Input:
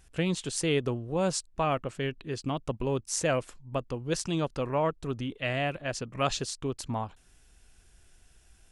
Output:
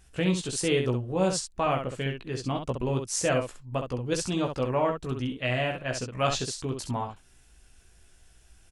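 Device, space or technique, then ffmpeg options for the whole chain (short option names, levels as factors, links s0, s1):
slapback doubling: -filter_complex "[0:a]asplit=3[s0][s1][s2];[s1]adelay=16,volume=0.596[s3];[s2]adelay=66,volume=0.501[s4];[s0][s3][s4]amix=inputs=3:normalize=0"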